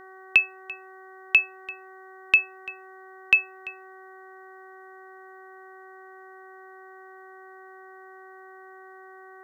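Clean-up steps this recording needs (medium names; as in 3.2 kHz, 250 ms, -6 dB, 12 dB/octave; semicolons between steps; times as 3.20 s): de-hum 378.4 Hz, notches 5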